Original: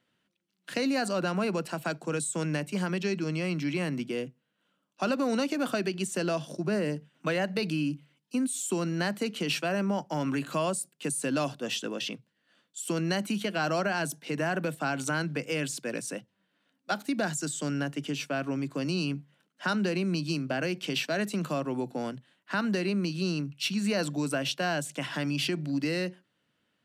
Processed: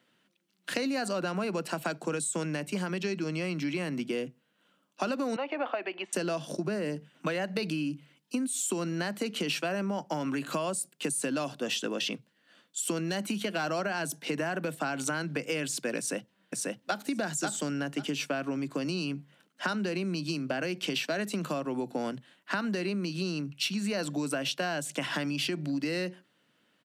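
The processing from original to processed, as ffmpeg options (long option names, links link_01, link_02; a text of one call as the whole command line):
ffmpeg -i in.wav -filter_complex "[0:a]asettb=1/sr,asplit=3[link_01][link_02][link_03];[link_01]atrim=end=5.364[link_04];[link_02]atrim=start=5.36:end=6.13,asetpts=PTS-STARTPTS,afade=type=in:duration=0.004:curve=qsin,afade=type=out:start_time=0.766:duration=0.004:curve=qsin,highpass=frequency=390:width=0.5412,highpass=frequency=390:width=1.3066,equalizer=frequency=410:width_type=q:width=4:gain=-9,equalizer=frequency=840:width_type=q:width=4:gain=6,equalizer=frequency=1500:width_type=q:width=4:gain=-6,lowpass=frequency=2600:width=0.5412,lowpass=frequency=2600:width=1.3066[link_05];[link_03]atrim=start=6.126[link_06];[link_04][link_05]acrossfade=duration=0.004:curve1=hsin:curve2=qsin[link_07];[link_07][link_06]acrossfade=duration=0.004:curve1=qsin:curve2=hsin,asplit=3[link_08][link_09][link_10];[link_08]afade=type=out:start_time=13.01:duration=0.02[link_11];[link_09]asoftclip=type=hard:threshold=-22dB,afade=type=in:start_time=13.01:duration=0.02,afade=type=out:start_time=13.63:duration=0.02[link_12];[link_10]afade=type=in:start_time=13.63:duration=0.02[link_13];[link_11][link_12][link_13]amix=inputs=3:normalize=0,asplit=2[link_14][link_15];[link_15]afade=type=in:start_time=15.98:duration=0.01,afade=type=out:start_time=17.06:duration=0.01,aecho=0:1:540|1080|1620:0.794328|0.119149|0.0178724[link_16];[link_14][link_16]amix=inputs=2:normalize=0,acompressor=threshold=-34dB:ratio=6,highpass=160,volume=6dB" out.wav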